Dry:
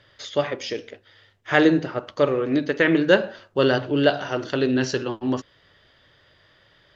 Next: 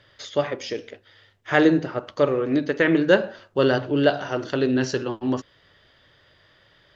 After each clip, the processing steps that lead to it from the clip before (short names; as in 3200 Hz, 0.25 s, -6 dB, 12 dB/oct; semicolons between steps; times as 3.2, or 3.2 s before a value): dynamic EQ 3200 Hz, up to -3 dB, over -38 dBFS, Q 0.8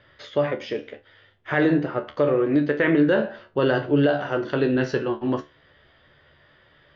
LPF 2800 Hz 12 dB/oct; resonator 73 Hz, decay 0.22 s, harmonics all, mix 80%; limiter -17.5 dBFS, peak gain reduction 9 dB; gain +7.5 dB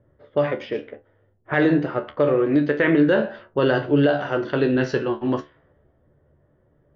low-pass opened by the level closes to 440 Hz, open at -20 dBFS; gain +1.5 dB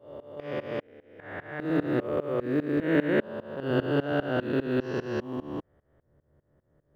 stepped spectrum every 0.4 s; tremolo saw up 5 Hz, depth 95%; short-mantissa float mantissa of 6-bit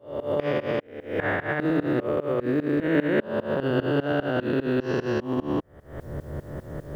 recorder AGC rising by 57 dB/s; gain +1.5 dB